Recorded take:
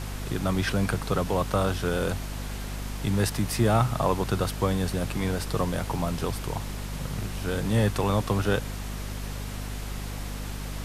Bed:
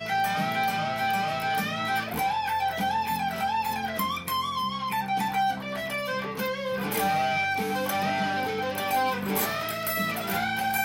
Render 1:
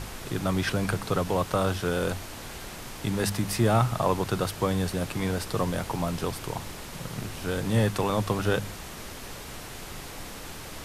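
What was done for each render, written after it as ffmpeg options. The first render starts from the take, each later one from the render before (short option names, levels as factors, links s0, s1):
-af "bandreject=f=50:t=h:w=4,bandreject=f=100:t=h:w=4,bandreject=f=150:t=h:w=4,bandreject=f=200:t=h:w=4,bandreject=f=250:t=h:w=4"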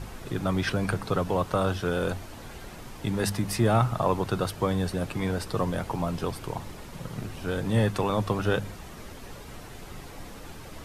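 -af "afftdn=nr=8:nf=-41"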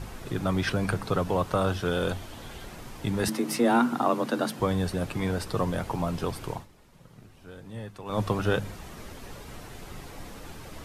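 -filter_complex "[0:a]asettb=1/sr,asplit=3[s0][s1][s2];[s0]atrim=end=1.854[s3];[s1]atrim=start=1.85:end=2.66,asetpts=PTS-STARTPTS,afade=t=in:d=0.004:c=qsin,afade=t=out:st=0.806:d=0.004:c=qsin,equalizer=f=3300:w=4.8:g=7[s4];[s2]atrim=start=2.656[s5];[s3][s4]acrossfade=d=0.004:c1=hsin:c2=qsin[s6];[s6][s5]acrossfade=d=0.004:c1=qsin:c2=hsin,asettb=1/sr,asplit=3[s7][s8][s9];[s7]atrim=end=3.284[s10];[s8]atrim=start=3.28:end=4.6,asetpts=PTS-STARTPTS,afade=t=in:d=0.004:c=qsin,afade=t=out:st=1.316:d=0.004:c=qsin,afreqshift=120[s11];[s9]atrim=start=4.596[s12];[s10][s11]acrossfade=d=0.004:c1=hsin:c2=qsin[s13];[s13][s12]acrossfade=d=0.004:c1=qsin:c2=hsin,asplit=3[s14][s15][s16];[s14]atrim=end=6.67,asetpts=PTS-STARTPTS,afade=t=out:st=6.52:d=0.15:silence=0.16788[s17];[s15]atrim=start=6.67:end=8.05,asetpts=PTS-STARTPTS,volume=0.168[s18];[s16]atrim=start=8.05,asetpts=PTS-STARTPTS,afade=t=in:d=0.15:silence=0.16788[s19];[s17][s18][s19]concat=n=3:v=0:a=1"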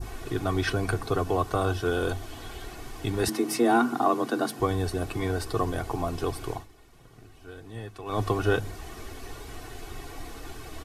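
-af "aecho=1:1:2.7:0.66,adynamicequalizer=threshold=0.00794:dfrequency=2600:dqfactor=0.77:tfrequency=2600:tqfactor=0.77:attack=5:release=100:ratio=0.375:range=2:mode=cutabove:tftype=bell"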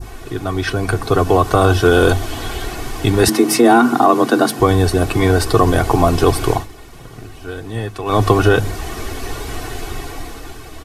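-af "dynaudnorm=f=180:g=13:m=5.62,alimiter=level_in=1.78:limit=0.891:release=50:level=0:latency=1"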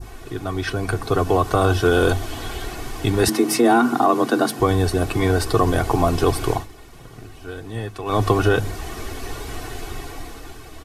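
-af "volume=0.562"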